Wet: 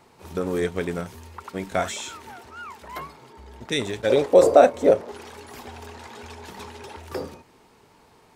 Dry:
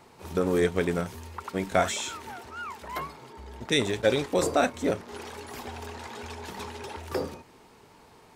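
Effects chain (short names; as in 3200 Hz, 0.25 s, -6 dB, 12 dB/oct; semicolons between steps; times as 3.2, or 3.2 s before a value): 4.1–5.12 bell 550 Hz +15 dB 1.2 oct; gain -1 dB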